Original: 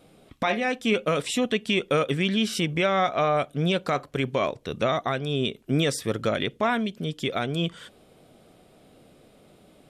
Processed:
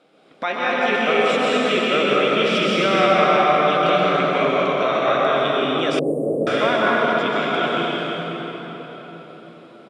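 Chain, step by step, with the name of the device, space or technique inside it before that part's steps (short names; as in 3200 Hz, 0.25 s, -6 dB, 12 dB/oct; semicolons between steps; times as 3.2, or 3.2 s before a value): station announcement (BPF 310–4700 Hz; bell 1400 Hz +6 dB 0.27 oct; loudspeakers at several distances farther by 33 m -12 dB, 74 m -12 dB; reverb RT60 4.7 s, pre-delay 0.119 s, DRR -7 dB); 5.99–6.47 inverse Chebyshev band-stop 1400–5700 Hz, stop band 50 dB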